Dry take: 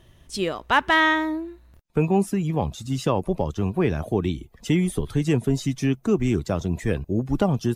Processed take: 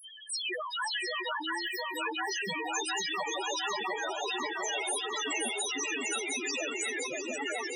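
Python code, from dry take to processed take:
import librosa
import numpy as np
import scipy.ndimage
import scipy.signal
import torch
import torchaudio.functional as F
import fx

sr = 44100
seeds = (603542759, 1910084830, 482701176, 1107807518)

y = fx.fade_out_tail(x, sr, length_s=1.04)
y = scipy.signal.sosfilt(scipy.signal.butter(2, 1000.0, 'highpass', fs=sr, output='sos'), y)
y = fx.high_shelf(y, sr, hz=4400.0, db=9.0)
y = fx.dispersion(y, sr, late='lows', ms=95.0, hz=2600.0)
y = fx.spec_topn(y, sr, count=1)
y = fx.echo_swing(y, sr, ms=705, ratio=3, feedback_pct=53, wet_db=-15.5)
y = fx.spectral_comp(y, sr, ratio=10.0)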